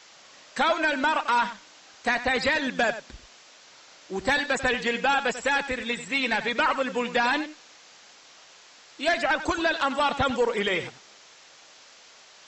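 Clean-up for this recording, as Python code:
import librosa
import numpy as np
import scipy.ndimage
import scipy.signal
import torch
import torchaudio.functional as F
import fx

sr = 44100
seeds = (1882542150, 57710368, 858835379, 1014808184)

y = fx.noise_reduce(x, sr, print_start_s=11.18, print_end_s=11.68, reduce_db=19.0)
y = fx.fix_echo_inverse(y, sr, delay_ms=93, level_db=-12.5)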